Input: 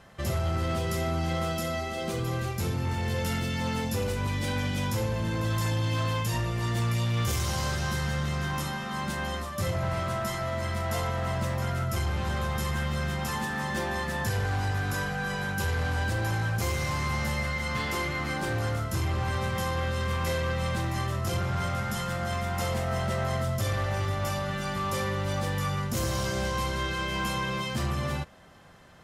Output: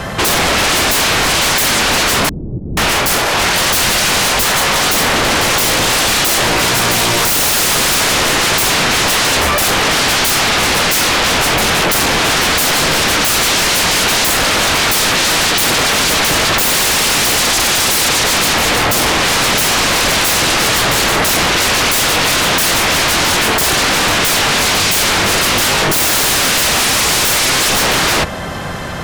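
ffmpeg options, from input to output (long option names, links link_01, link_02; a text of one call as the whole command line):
ffmpeg -i in.wav -filter_complex "[0:a]acrossover=split=320[link_01][link_02];[link_01]acompressor=threshold=-32dB:ratio=10[link_03];[link_03][link_02]amix=inputs=2:normalize=0,aeval=exprs='0.119*sin(PI/2*8.91*val(0)/0.119)':channel_layout=same,asettb=1/sr,asplit=3[link_04][link_05][link_06];[link_04]atrim=end=2.294[link_07];[link_05]atrim=start=2.29:end=4.83,asetpts=PTS-STARTPTS,afade=type=in:duration=0.004:curve=qsin,afade=type=out:start_time=2.536:duration=0.004:curve=qsin,acrossover=split=310[link_08][link_09];[link_09]adelay=480[link_10];[link_08][link_10]amix=inputs=2:normalize=0,atrim=end_sample=112014[link_11];[link_06]atrim=start=4.826[link_12];[link_07][link_11]acrossfade=duration=0.004:curve1=hsin:curve2=qsin[link_13];[link_13][link_12]acrossfade=duration=0.004:curve1=qsin:curve2=hsin,volume=8.5dB" out.wav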